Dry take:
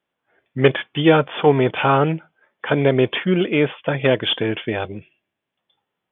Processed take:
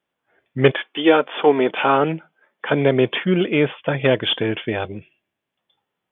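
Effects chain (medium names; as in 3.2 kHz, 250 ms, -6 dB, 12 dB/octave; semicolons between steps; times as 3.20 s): 0.70–3.22 s: high-pass 310 Hz -> 110 Hz 24 dB/octave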